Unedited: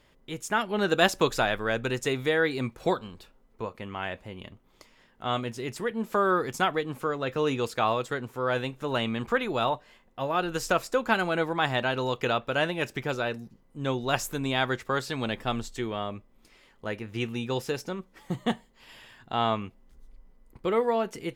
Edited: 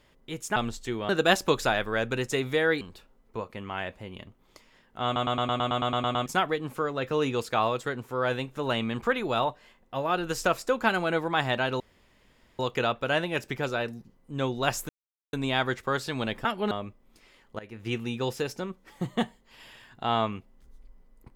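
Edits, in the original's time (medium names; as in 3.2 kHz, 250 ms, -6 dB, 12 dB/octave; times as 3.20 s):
0.56–0.82 s: swap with 15.47–16.00 s
2.54–3.06 s: delete
5.30 s: stutter in place 0.11 s, 11 plays
12.05 s: insert room tone 0.79 s
14.35 s: insert silence 0.44 s
16.88–17.17 s: fade in, from -18 dB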